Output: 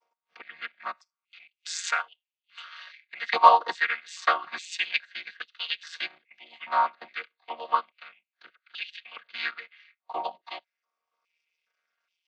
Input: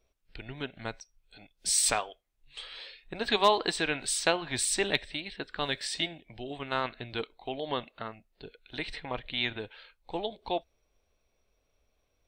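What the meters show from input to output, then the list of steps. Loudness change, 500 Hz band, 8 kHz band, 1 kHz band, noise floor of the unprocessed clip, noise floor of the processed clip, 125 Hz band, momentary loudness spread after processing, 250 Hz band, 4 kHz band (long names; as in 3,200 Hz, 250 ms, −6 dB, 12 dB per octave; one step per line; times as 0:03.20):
+3.5 dB, −4.0 dB, −11.5 dB, +9.0 dB, −76 dBFS, below −85 dBFS, below −20 dB, 20 LU, below −15 dB, −3.0 dB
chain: channel vocoder with a chord as carrier minor triad, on D#3
transient designer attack +1 dB, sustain −7 dB
high-pass on a step sequencer 2.4 Hz 940–2,900 Hz
level +4 dB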